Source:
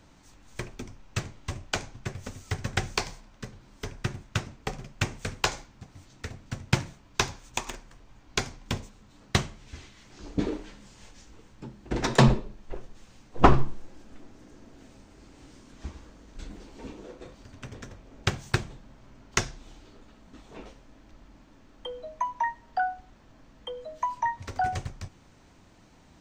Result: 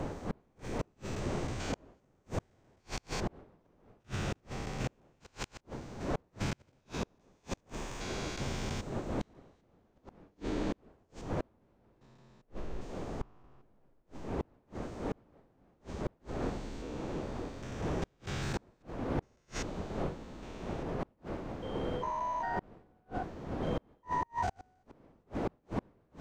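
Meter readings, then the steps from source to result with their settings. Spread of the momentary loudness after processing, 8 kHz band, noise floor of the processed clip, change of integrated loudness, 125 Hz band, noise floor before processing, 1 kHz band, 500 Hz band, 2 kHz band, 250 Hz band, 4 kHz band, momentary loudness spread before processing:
11 LU, -10.5 dB, -72 dBFS, -9.0 dB, -8.5 dB, -56 dBFS, -8.0 dB, -4.0 dB, -11.0 dB, -5.0 dB, -11.5 dB, 17 LU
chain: spectrogram pixelated in time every 400 ms; wind noise 470 Hz -32 dBFS; inverted gate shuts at -26 dBFS, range -39 dB; trim +3.5 dB

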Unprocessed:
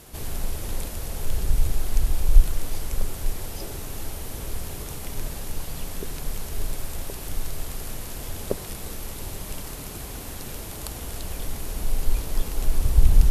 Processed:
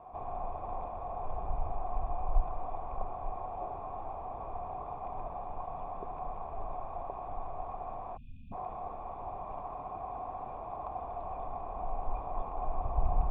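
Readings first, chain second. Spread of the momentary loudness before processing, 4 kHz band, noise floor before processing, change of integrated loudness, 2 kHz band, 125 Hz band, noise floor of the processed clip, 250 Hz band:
11 LU, under -30 dB, -36 dBFS, -9.0 dB, -18.5 dB, -14.0 dB, -43 dBFS, -12.5 dB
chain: cascade formant filter a; spectral selection erased 8.17–8.53 s, 270–2400 Hz; trim +14 dB

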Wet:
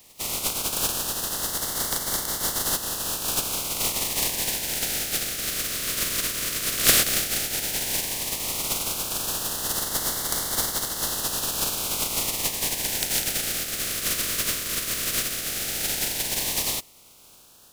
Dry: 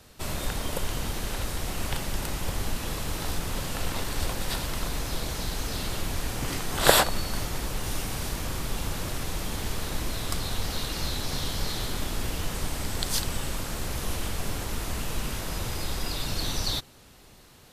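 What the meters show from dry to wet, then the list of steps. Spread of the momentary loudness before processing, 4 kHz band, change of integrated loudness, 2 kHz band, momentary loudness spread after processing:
4 LU, +5.0 dB, +6.5 dB, +3.0 dB, 3 LU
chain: spectral contrast reduction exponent 0.15; LFO notch sine 0.12 Hz 850–2500 Hz; trim +1.5 dB

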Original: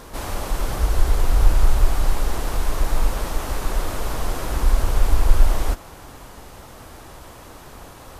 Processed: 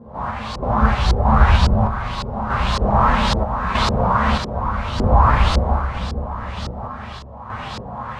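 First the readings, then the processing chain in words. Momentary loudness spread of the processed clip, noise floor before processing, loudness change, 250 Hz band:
15 LU, -42 dBFS, +5.5 dB, +11.0 dB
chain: graphic EQ 250/1000/4000/8000 Hz -3/+8/+5/+6 dB; Schroeder reverb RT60 0.7 s, combs from 29 ms, DRR -0.5 dB; chorus voices 6, 0.39 Hz, delay 13 ms, depth 4.8 ms; high-pass 48 Hz 24 dB/octave; resonant low shelf 260 Hz +6.5 dB, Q 3; on a send: two-band feedback delay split 730 Hz, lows 458 ms, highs 118 ms, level -11.5 dB; on the sum: random-step tremolo 3.2 Hz, depth 70%; LFO low-pass saw up 1.8 Hz 380–4800 Hz; trim +6.5 dB

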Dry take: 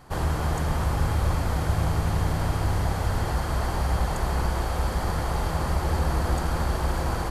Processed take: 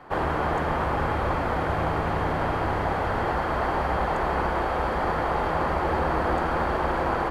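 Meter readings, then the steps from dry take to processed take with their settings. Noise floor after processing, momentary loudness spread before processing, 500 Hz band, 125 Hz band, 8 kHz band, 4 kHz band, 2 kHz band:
-27 dBFS, 2 LU, +6.0 dB, -6.0 dB, under -10 dB, -3.0 dB, +5.5 dB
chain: three-band isolator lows -14 dB, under 240 Hz, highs -22 dB, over 2.9 kHz; trim +6.5 dB

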